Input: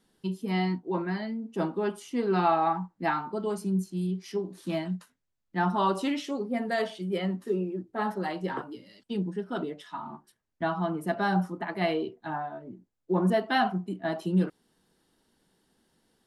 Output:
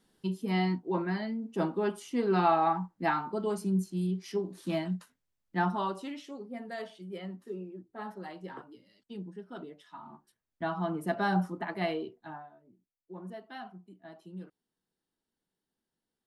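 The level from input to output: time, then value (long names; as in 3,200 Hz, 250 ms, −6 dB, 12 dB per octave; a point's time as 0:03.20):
0:05.59 −1 dB
0:06.01 −11 dB
0:09.77 −11 dB
0:10.98 −2 dB
0:11.65 −2 dB
0:12.30 −9 dB
0:12.57 −19 dB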